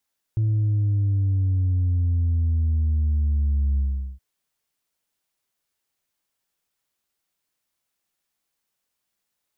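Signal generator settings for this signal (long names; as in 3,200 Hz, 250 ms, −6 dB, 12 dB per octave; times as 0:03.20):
bass drop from 110 Hz, over 3.82 s, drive 1.5 dB, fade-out 0.41 s, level −18.5 dB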